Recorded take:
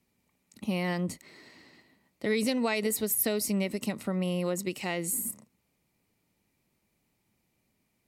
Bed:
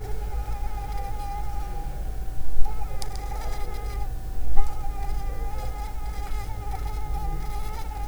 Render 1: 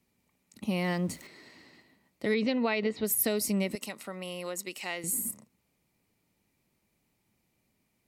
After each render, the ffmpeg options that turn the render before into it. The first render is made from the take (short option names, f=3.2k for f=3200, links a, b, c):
-filter_complex "[0:a]asettb=1/sr,asplit=3[a][b][c];[a]atrim=end=0.784[d];[b]atrim=start=0.78:end=1.27,asetpts=PTS-STARTPTS,afade=t=in:d=0.004:c=qsin,afade=t=out:st=0.486:d=0.004:c=qsin,aeval=exprs='val(0)+0.5*0.00398*sgn(val(0))':c=same[e];[c]atrim=start=1.266[f];[d][e]acrossfade=d=0.004:c1=hsin:c2=qsin[g];[g][f]acrossfade=d=0.004:c1=qsin:c2=hsin,asettb=1/sr,asplit=3[h][i][j];[h]atrim=end=2.344[k];[i]atrim=start=2.34:end=3.05,asetpts=PTS-STARTPTS,afade=t=in:d=0.004:c=qsin,afade=t=out:st=0.706:d=0.004:c=qsin,lowpass=f=4k:w=0.5412,lowpass=f=4k:w=1.3066[l];[j]atrim=start=3.046[m];[k][l]acrossfade=d=0.004:c1=hsin:c2=qsin[n];[n][m]acrossfade=d=0.004:c1=qsin:c2=hsin,asettb=1/sr,asplit=3[o][p][q];[o]atrim=end=3.754[r];[p]atrim=start=3.75:end=5.04,asetpts=PTS-STARTPTS,afade=t=in:d=0.004:c=qsin,afade=t=out:st=1.286:d=0.004:c=qsin,highpass=f=890:p=1[s];[q]atrim=start=5.036[t];[r][s]acrossfade=d=0.004:c1=hsin:c2=qsin[u];[u][t]acrossfade=d=0.004:c1=qsin:c2=hsin"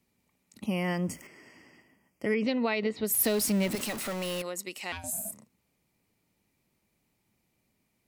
-filter_complex "[0:a]asettb=1/sr,asplit=3[a][b][c];[a]atrim=end=0.664[d];[b]atrim=start=0.66:end=2.44,asetpts=PTS-STARTPTS,afade=t=in:d=0.004:c=qsin,afade=t=out:st=1.776:d=0.004:c=qsin,asuperstop=centerf=3900:order=12:qfactor=2.9[e];[c]atrim=start=2.436[f];[d][e]acrossfade=d=0.004:c1=hsin:c2=qsin[g];[g][f]acrossfade=d=0.004:c1=qsin:c2=hsin,asettb=1/sr,asplit=3[h][i][j];[h]atrim=end=3.144[k];[i]atrim=start=3.14:end=4.42,asetpts=PTS-STARTPTS,afade=t=in:d=0.004:c=qsin,afade=t=out:st=1.276:d=0.004:c=qsin,aeval=exprs='val(0)+0.5*0.0251*sgn(val(0))':c=same[l];[j]atrim=start=4.416[m];[k][l]acrossfade=d=0.004:c1=hsin:c2=qsin[n];[n][m]acrossfade=d=0.004:c1=qsin:c2=hsin,asettb=1/sr,asplit=3[o][p][q];[o]atrim=end=4.924[r];[p]atrim=start=4.92:end=5.32,asetpts=PTS-STARTPTS,afade=t=in:d=0.004:c=qsin,afade=t=out:st=0.396:d=0.004:c=qsin,aeval=exprs='val(0)*sin(2*PI*430*n/s)':c=same[s];[q]atrim=start=5.316[t];[r][s]acrossfade=d=0.004:c1=hsin:c2=qsin[u];[u][t]acrossfade=d=0.004:c1=qsin:c2=hsin"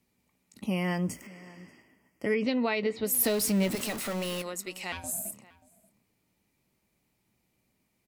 -filter_complex "[0:a]asplit=2[a][b];[b]adelay=16,volume=-13dB[c];[a][c]amix=inputs=2:normalize=0,asplit=2[d][e];[e]adelay=583.1,volume=-20dB,highshelf=f=4k:g=-13.1[f];[d][f]amix=inputs=2:normalize=0"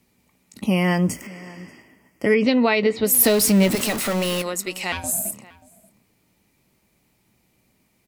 -af "volume=10dB"